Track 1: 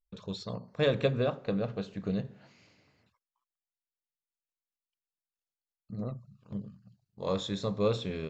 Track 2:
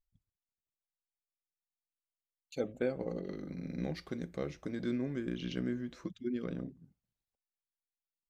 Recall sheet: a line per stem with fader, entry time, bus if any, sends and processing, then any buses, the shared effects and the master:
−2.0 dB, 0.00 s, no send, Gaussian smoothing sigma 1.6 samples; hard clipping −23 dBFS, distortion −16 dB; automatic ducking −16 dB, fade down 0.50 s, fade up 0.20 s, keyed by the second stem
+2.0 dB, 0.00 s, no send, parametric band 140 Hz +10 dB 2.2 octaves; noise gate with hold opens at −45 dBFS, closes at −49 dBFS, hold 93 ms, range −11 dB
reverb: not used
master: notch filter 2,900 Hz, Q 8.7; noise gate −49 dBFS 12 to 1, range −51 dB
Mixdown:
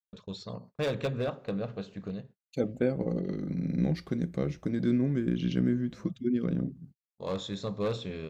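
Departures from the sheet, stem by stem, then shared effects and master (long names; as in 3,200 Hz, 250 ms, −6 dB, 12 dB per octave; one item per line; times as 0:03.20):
stem 1: missing Gaussian smoothing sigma 1.6 samples
master: missing notch filter 2,900 Hz, Q 8.7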